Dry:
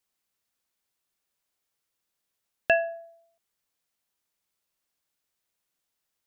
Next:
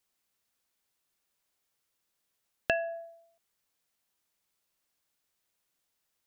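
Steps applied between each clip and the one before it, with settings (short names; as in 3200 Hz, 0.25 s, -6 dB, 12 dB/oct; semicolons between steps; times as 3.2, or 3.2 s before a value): compressor 3:1, threshold -29 dBFS, peak gain reduction 9.5 dB; gain +1.5 dB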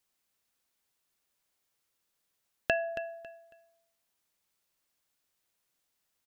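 feedback echo 0.275 s, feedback 25%, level -12.5 dB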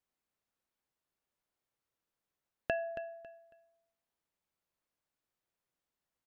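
high shelf 2300 Hz -12 dB; gain -3 dB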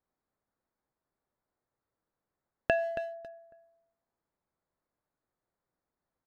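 Wiener smoothing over 15 samples; gain +6.5 dB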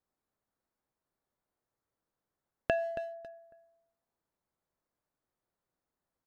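dynamic EQ 2100 Hz, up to -4 dB, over -45 dBFS, Q 0.81; gain -1.5 dB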